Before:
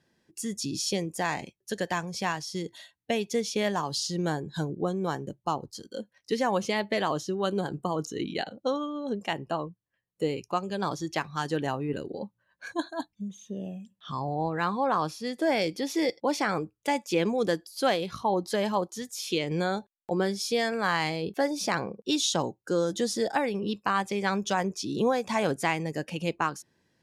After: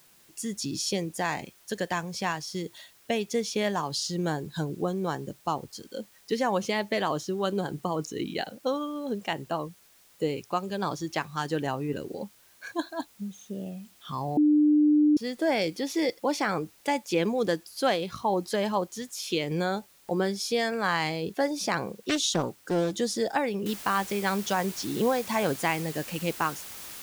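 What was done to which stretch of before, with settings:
14.37–15.17 bleep 299 Hz -17 dBFS
22.09–22.91 Doppler distortion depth 0.39 ms
23.66 noise floor step -59 dB -42 dB

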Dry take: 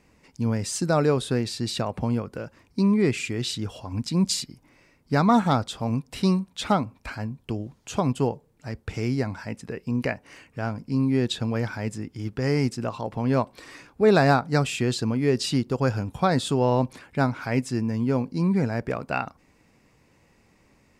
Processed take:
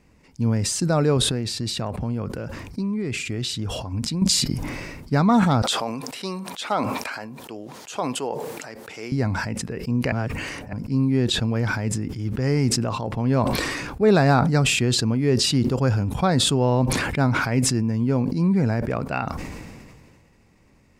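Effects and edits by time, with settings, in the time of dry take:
1.17–4.22 compressor, threshold -25 dBFS
5.62–9.12 HPF 480 Hz
10.12–10.73 reverse
whole clip: low shelf 210 Hz +6.5 dB; sustainer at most 29 dB/s; gain -1 dB

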